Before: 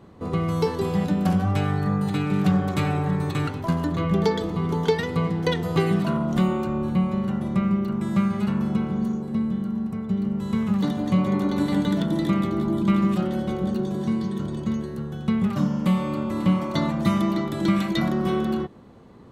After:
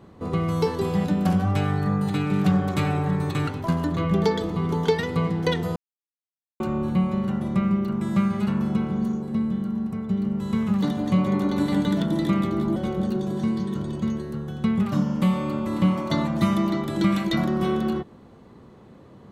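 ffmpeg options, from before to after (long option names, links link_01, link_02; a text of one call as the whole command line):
ffmpeg -i in.wav -filter_complex "[0:a]asplit=4[link_01][link_02][link_03][link_04];[link_01]atrim=end=5.76,asetpts=PTS-STARTPTS,afade=type=out:start_time=5.756:duration=0.004:curve=hsin[link_05];[link_02]atrim=start=5.76:end=6.6,asetpts=PTS-STARTPTS,volume=0[link_06];[link_03]atrim=start=6.6:end=12.762,asetpts=PTS-STARTPTS,afade=type=in:duration=0.004:curve=hsin[link_07];[link_04]atrim=start=13.398[link_08];[link_05][link_06][link_07]concat=n=3:v=0:a=1[link_09];[link_09][link_08]acrossfade=duration=0.004:curve1=hsin:curve2=hsin" out.wav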